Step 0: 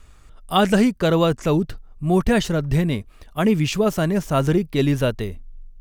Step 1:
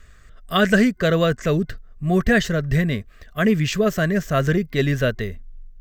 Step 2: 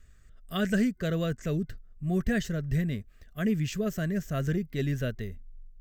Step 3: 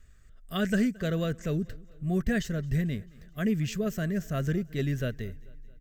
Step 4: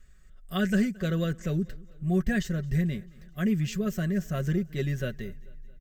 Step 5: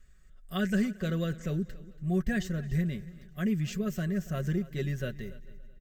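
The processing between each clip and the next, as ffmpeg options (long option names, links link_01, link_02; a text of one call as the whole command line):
ffmpeg -i in.wav -af "superequalizer=6b=0.562:9b=0.251:11b=2.51:16b=0.316" out.wav
ffmpeg -i in.wav -af "equalizer=frequency=500:width_type=o:width=1:gain=-4,equalizer=frequency=1000:width_type=o:width=1:gain=-9,equalizer=frequency=2000:width_type=o:width=1:gain=-4,equalizer=frequency=4000:width_type=o:width=1:gain=-5,volume=-7.5dB" out.wav
ffmpeg -i in.wav -af "aecho=1:1:221|442|663|884:0.0631|0.036|0.0205|0.0117" out.wav
ffmpeg -i in.wav -af "aecho=1:1:5.4:0.54,volume=-1dB" out.wav
ffmpeg -i in.wav -af "aecho=1:1:283|566:0.112|0.0247,volume=-3dB" out.wav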